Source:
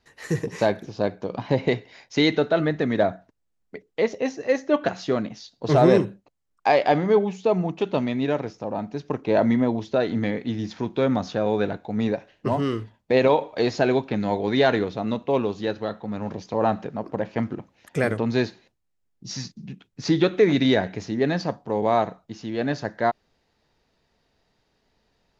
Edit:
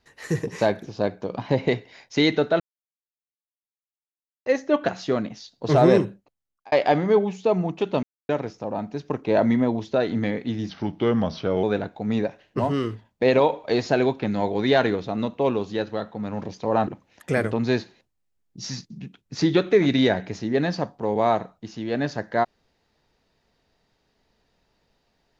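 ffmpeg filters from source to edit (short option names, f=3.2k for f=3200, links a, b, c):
-filter_complex "[0:a]asplit=9[a][b][c][d][e][f][g][h][i];[a]atrim=end=2.6,asetpts=PTS-STARTPTS,afade=t=out:st=2.596:d=0.004:c=hsin[j];[b]atrim=start=2.6:end=4.46,asetpts=PTS-STARTPTS,volume=0[k];[c]atrim=start=4.46:end=6.72,asetpts=PTS-STARTPTS,afade=t=in:d=0.004:c=hsin,afade=t=out:st=1.6:d=0.66[l];[d]atrim=start=6.72:end=8.03,asetpts=PTS-STARTPTS,afade=t=in:d=0.004:c=hsin,afade=t=out:st=1.306:d=0.004:c=hsin[m];[e]atrim=start=8.03:end=8.29,asetpts=PTS-STARTPTS,volume=0[n];[f]atrim=start=8.29:end=10.694,asetpts=PTS-STARTPTS,afade=t=in:d=0.004:c=hsin[o];[g]atrim=start=10.69:end=11.52,asetpts=PTS-STARTPTS,asetrate=38808,aresample=44100,atrim=end_sample=41594,asetpts=PTS-STARTPTS[p];[h]atrim=start=11.516:end=16.762[q];[i]atrim=start=17.538[r];[j][k][l][m][n][o]concat=n=6:v=0:a=1[s];[s][p]acrossfade=d=0.004:c1=hsin:c2=hsin[t];[t][q]acrossfade=d=0.004:c1=hsin:c2=hsin[u];[u][r]acrossfade=d=0.004:c1=hsin:c2=hsin"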